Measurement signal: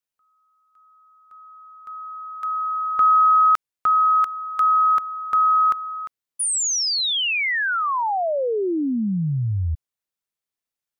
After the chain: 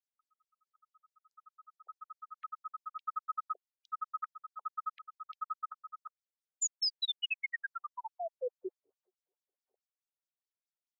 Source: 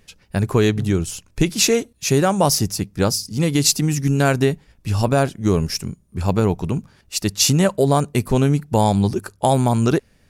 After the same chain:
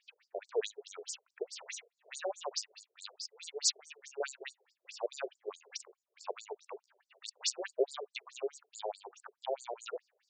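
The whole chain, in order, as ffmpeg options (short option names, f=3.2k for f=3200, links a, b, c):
-filter_complex "[0:a]bandreject=f=60:t=h:w=6,bandreject=f=120:t=h:w=6,bandreject=f=180:t=h:w=6,bandreject=f=240:t=h:w=6,bandreject=f=300:t=h:w=6,acrossover=split=500|1700[a][b][c];[b]acompressor=threshold=-35dB:ratio=6:attack=48:release=272:detection=rms[d];[c]volume=14.5dB,asoftclip=hard,volume=-14.5dB[e];[a][d][e]amix=inputs=3:normalize=0,afftfilt=real='re*between(b*sr/1024,490*pow(6300/490,0.5+0.5*sin(2*PI*4.7*pts/sr))/1.41,490*pow(6300/490,0.5+0.5*sin(2*PI*4.7*pts/sr))*1.41)':imag='im*between(b*sr/1024,490*pow(6300/490,0.5+0.5*sin(2*PI*4.7*pts/sr))/1.41,490*pow(6300/490,0.5+0.5*sin(2*PI*4.7*pts/sr))*1.41)':win_size=1024:overlap=0.75,volume=-7dB"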